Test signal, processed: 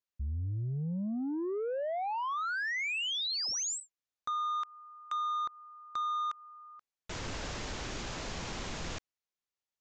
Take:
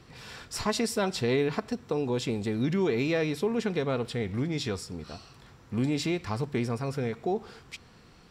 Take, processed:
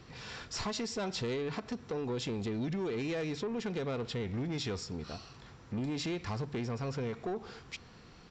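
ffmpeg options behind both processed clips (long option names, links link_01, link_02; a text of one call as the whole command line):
ffmpeg -i in.wav -af "acompressor=threshold=-29dB:ratio=4,aresample=16000,asoftclip=type=tanh:threshold=-30dB,aresample=44100" out.wav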